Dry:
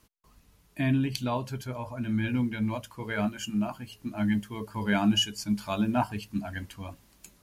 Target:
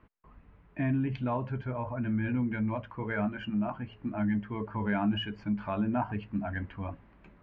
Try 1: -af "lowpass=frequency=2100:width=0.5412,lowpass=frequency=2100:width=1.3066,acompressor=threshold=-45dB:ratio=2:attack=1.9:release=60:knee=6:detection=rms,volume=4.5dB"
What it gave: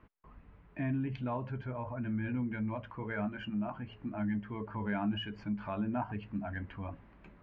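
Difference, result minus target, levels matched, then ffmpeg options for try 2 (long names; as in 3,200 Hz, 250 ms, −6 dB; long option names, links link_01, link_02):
downward compressor: peak gain reduction +4.5 dB
-af "lowpass=frequency=2100:width=0.5412,lowpass=frequency=2100:width=1.3066,acompressor=threshold=-35.5dB:ratio=2:attack=1.9:release=60:knee=6:detection=rms,volume=4.5dB"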